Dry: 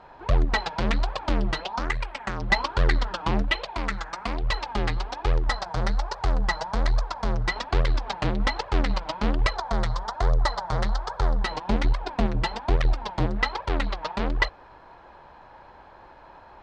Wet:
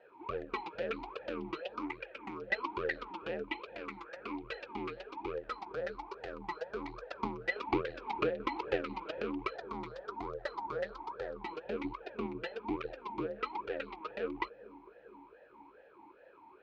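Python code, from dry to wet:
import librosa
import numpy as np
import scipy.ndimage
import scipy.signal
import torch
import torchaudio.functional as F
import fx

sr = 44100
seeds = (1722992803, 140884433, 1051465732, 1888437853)

y = fx.transient(x, sr, attack_db=9, sustain_db=5, at=(7.1, 9.22))
y = fx.echo_bbd(y, sr, ms=453, stages=2048, feedback_pct=56, wet_db=-16.5)
y = fx.vowel_sweep(y, sr, vowels='e-u', hz=2.4)
y = y * librosa.db_to_amplitude(2.5)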